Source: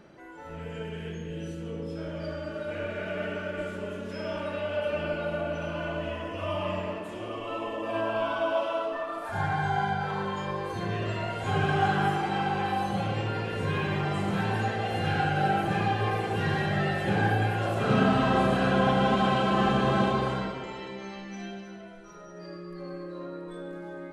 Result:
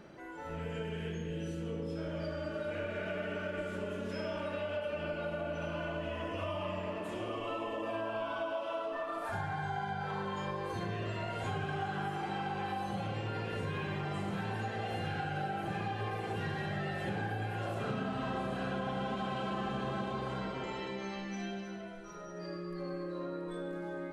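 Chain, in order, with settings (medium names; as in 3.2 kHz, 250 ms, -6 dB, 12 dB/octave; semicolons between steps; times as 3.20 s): compression, threshold -34 dBFS, peak gain reduction 15 dB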